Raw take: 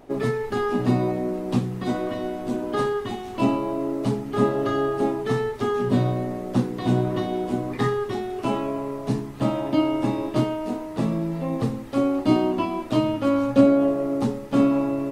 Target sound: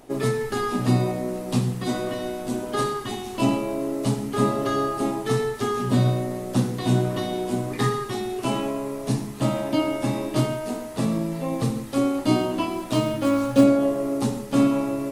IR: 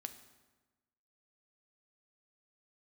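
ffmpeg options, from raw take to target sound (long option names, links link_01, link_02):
-filter_complex "[1:a]atrim=start_sample=2205,afade=type=out:start_time=0.14:duration=0.01,atrim=end_sample=6615,asetrate=23373,aresample=44100[link_01];[0:a][link_01]afir=irnorm=-1:irlink=0,crystalizer=i=2.5:c=0,asettb=1/sr,asplit=3[link_02][link_03][link_04];[link_02]atrim=end=12.704[link_05];[link_03]atrim=start=12.7:end=13.64,asetpts=PTS-STARTPTS,afade=type=in:duration=0.004:curve=qsin,afade=type=out:start_time=0.936:duration=0.004:curve=qsin,acrusher=bits=8:mode=log:mix=0:aa=0.000001[link_06];[link_04]atrim=start=13.636[link_07];[link_05][link_06]acrossfade=duration=0.004:curve1=hsin:curve2=qsin[link_08];[link_08][link_07]acrossfade=duration=0.004:curve1=qsin:curve2=hsin"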